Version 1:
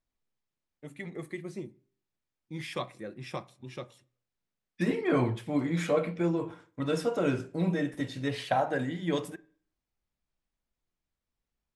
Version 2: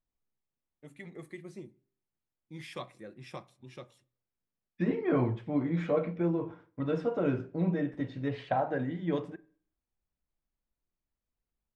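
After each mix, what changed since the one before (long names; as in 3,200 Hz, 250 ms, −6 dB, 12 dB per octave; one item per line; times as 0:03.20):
first voice −6.0 dB
second voice: add head-to-tape spacing loss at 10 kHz 32 dB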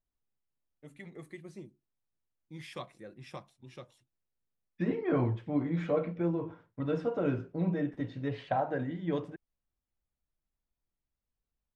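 reverb: off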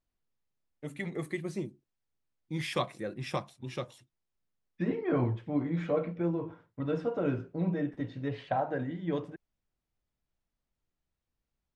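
first voice +11.0 dB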